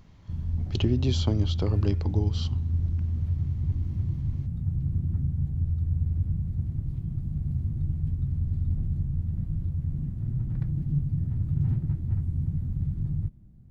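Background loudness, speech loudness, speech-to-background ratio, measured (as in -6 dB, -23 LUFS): -29.5 LUFS, -29.0 LUFS, 0.5 dB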